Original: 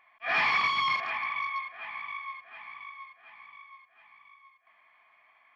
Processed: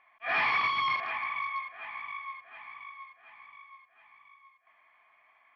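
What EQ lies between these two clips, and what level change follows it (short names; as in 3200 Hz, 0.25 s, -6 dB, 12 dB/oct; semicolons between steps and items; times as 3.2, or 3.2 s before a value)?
air absorption 160 m; bell 190 Hz -6 dB 0.39 oct; 0.0 dB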